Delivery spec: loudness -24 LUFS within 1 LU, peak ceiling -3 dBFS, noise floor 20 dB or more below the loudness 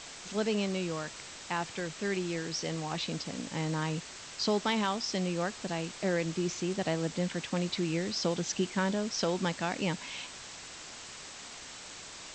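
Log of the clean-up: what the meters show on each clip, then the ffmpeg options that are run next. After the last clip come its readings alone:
noise floor -47 dBFS; noise floor target -54 dBFS; loudness -33.5 LUFS; peak level -18.5 dBFS; loudness target -24.0 LUFS
-> -af "afftdn=nr=7:nf=-47"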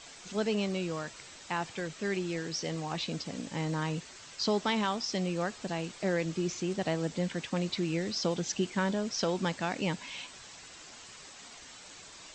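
noise floor -50 dBFS; noise floor target -53 dBFS
-> -af "afftdn=nr=6:nf=-50"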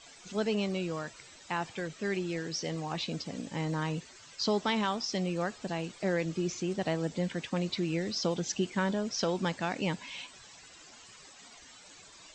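noise floor -54 dBFS; loudness -33.5 LUFS; peak level -18.5 dBFS; loudness target -24.0 LUFS
-> -af "volume=2.99"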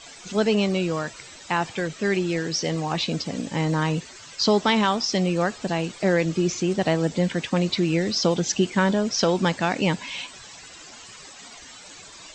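loudness -24.0 LUFS; peak level -9.0 dBFS; noise floor -44 dBFS

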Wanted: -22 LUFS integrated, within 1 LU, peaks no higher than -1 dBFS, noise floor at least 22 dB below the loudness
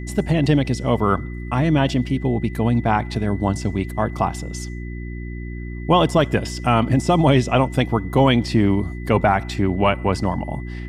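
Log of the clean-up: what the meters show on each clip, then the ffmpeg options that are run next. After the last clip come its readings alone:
hum 60 Hz; highest harmonic 360 Hz; hum level -27 dBFS; steady tone 2 kHz; tone level -41 dBFS; loudness -20.0 LUFS; peak level -4.5 dBFS; loudness target -22.0 LUFS
-> -af "bandreject=f=60:t=h:w=4,bandreject=f=120:t=h:w=4,bandreject=f=180:t=h:w=4,bandreject=f=240:t=h:w=4,bandreject=f=300:t=h:w=4,bandreject=f=360:t=h:w=4"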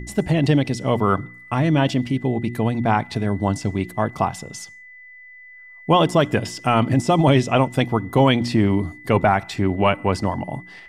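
hum not found; steady tone 2 kHz; tone level -41 dBFS
-> -af "bandreject=f=2000:w=30"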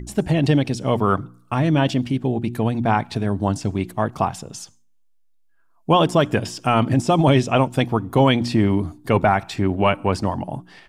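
steady tone not found; loudness -20.0 LUFS; peak level -5.0 dBFS; loudness target -22.0 LUFS
-> -af "volume=0.794"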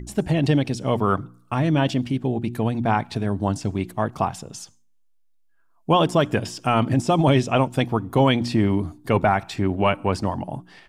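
loudness -22.0 LUFS; peak level -7.0 dBFS; noise floor -59 dBFS

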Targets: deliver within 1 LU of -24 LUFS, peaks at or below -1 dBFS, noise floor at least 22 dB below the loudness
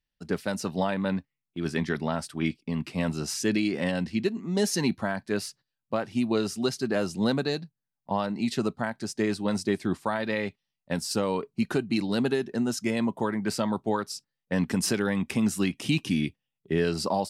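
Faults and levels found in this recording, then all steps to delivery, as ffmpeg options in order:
loudness -28.5 LUFS; peak level -13.5 dBFS; loudness target -24.0 LUFS
-> -af "volume=1.68"

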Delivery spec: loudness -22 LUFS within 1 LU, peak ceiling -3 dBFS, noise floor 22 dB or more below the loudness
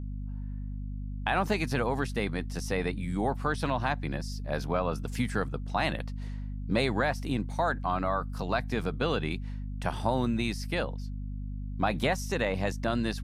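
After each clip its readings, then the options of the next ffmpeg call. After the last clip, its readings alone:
hum 50 Hz; highest harmonic 250 Hz; hum level -33 dBFS; loudness -31.5 LUFS; peak level -13.0 dBFS; loudness target -22.0 LUFS
-> -af "bandreject=f=50:t=h:w=4,bandreject=f=100:t=h:w=4,bandreject=f=150:t=h:w=4,bandreject=f=200:t=h:w=4,bandreject=f=250:t=h:w=4"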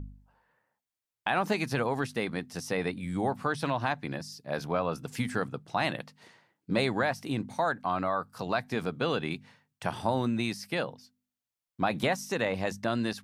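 hum not found; loudness -31.5 LUFS; peak level -13.5 dBFS; loudness target -22.0 LUFS
-> -af "volume=2.99"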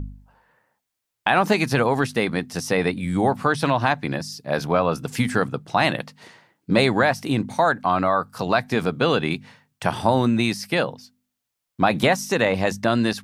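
loudness -22.0 LUFS; peak level -4.0 dBFS; noise floor -81 dBFS

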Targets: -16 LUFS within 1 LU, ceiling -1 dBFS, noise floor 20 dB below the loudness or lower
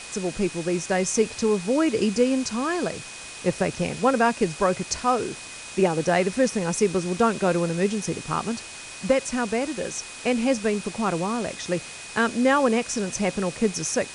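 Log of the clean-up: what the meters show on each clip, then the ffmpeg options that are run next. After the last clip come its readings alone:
steady tone 2.5 kHz; tone level -43 dBFS; noise floor -39 dBFS; noise floor target -45 dBFS; loudness -24.5 LUFS; peak level -7.5 dBFS; loudness target -16.0 LUFS
-> -af "bandreject=f=2500:w=30"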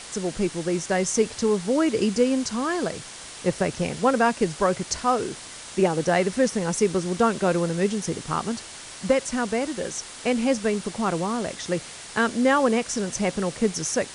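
steady tone not found; noise floor -40 dBFS; noise floor target -45 dBFS
-> -af "afftdn=nr=6:nf=-40"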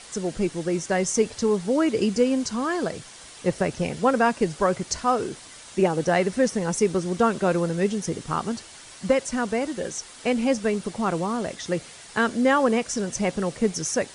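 noise floor -45 dBFS; loudness -24.5 LUFS; peak level -7.5 dBFS; loudness target -16.0 LUFS
-> -af "volume=2.66,alimiter=limit=0.891:level=0:latency=1"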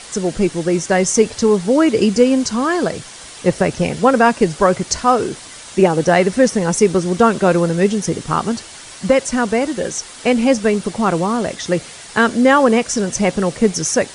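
loudness -16.0 LUFS; peak level -1.0 dBFS; noise floor -36 dBFS

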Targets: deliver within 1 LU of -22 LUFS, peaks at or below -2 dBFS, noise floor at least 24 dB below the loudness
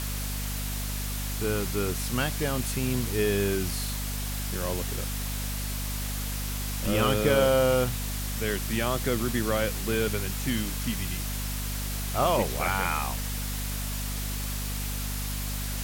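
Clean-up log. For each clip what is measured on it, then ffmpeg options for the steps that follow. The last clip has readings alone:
hum 50 Hz; highest harmonic 250 Hz; hum level -30 dBFS; noise floor -32 dBFS; noise floor target -53 dBFS; loudness -28.5 LUFS; peak level -10.0 dBFS; loudness target -22.0 LUFS
-> -af "bandreject=f=50:t=h:w=6,bandreject=f=100:t=h:w=6,bandreject=f=150:t=h:w=6,bandreject=f=200:t=h:w=6,bandreject=f=250:t=h:w=6"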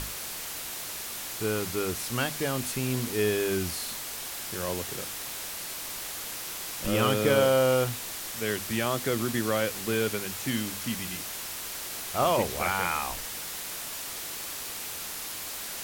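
hum not found; noise floor -37 dBFS; noise floor target -54 dBFS
-> -af "afftdn=nr=17:nf=-37"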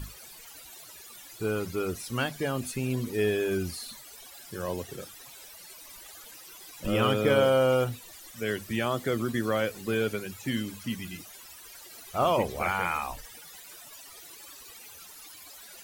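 noise floor -48 dBFS; noise floor target -53 dBFS
-> -af "afftdn=nr=6:nf=-48"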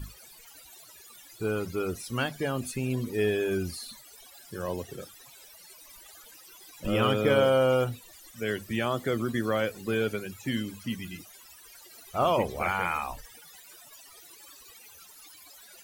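noise floor -52 dBFS; noise floor target -53 dBFS
-> -af "afftdn=nr=6:nf=-52"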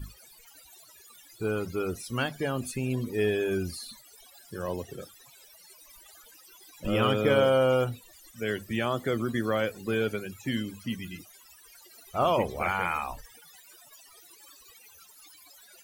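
noise floor -55 dBFS; loudness -29.0 LUFS; peak level -12.0 dBFS; loudness target -22.0 LUFS
-> -af "volume=2.24"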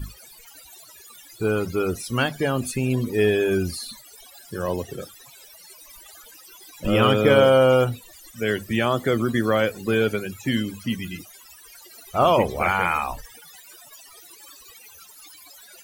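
loudness -22.0 LUFS; peak level -5.0 dBFS; noise floor -48 dBFS

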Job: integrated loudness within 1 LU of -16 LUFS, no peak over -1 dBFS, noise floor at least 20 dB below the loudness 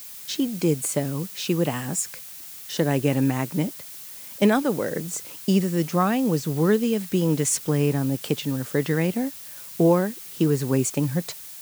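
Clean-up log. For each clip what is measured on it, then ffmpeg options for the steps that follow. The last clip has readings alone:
noise floor -40 dBFS; noise floor target -44 dBFS; loudness -24.0 LUFS; peak level -7.0 dBFS; loudness target -16.0 LUFS
-> -af "afftdn=nr=6:nf=-40"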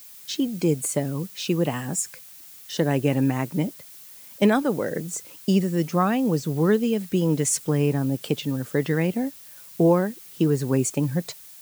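noise floor -45 dBFS; loudness -24.0 LUFS; peak level -7.0 dBFS; loudness target -16.0 LUFS
-> -af "volume=2.51,alimiter=limit=0.891:level=0:latency=1"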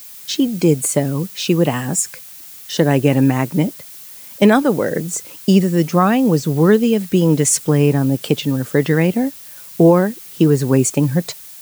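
loudness -16.0 LUFS; peak level -1.0 dBFS; noise floor -37 dBFS

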